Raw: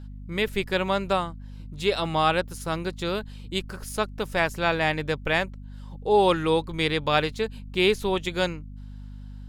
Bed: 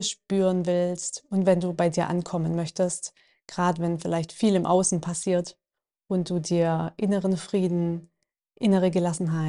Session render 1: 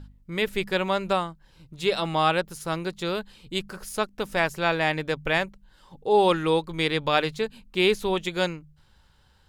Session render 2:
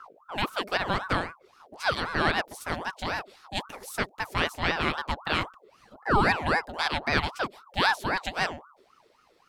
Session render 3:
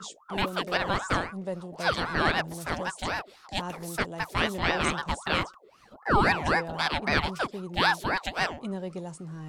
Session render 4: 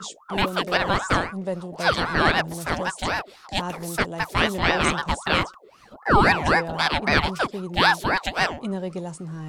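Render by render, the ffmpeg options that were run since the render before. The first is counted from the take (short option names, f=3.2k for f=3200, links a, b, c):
-af "bandreject=f=50:t=h:w=4,bandreject=f=100:t=h:w=4,bandreject=f=150:t=h:w=4,bandreject=f=200:t=h:w=4,bandreject=f=250:t=h:w=4"
-filter_complex "[0:a]acrossover=split=160|1500|2400[a][b][c][d];[a]asoftclip=type=tanh:threshold=-39dB[e];[e][b][c][d]amix=inputs=4:normalize=0,aeval=exprs='val(0)*sin(2*PI*860*n/s+860*0.55/3.8*sin(2*PI*3.8*n/s))':c=same"
-filter_complex "[1:a]volume=-13.5dB[a];[0:a][a]amix=inputs=2:normalize=0"
-af "volume=5.5dB"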